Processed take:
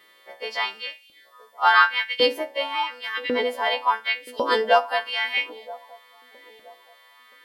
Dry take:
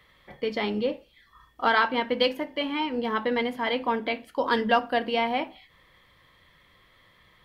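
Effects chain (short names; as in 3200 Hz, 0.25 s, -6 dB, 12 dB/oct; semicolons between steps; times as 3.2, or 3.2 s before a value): frequency quantiser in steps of 2 st; LFO high-pass saw up 0.91 Hz 290–2700 Hz; band-limited delay 0.974 s, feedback 32%, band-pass 460 Hz, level -19 dB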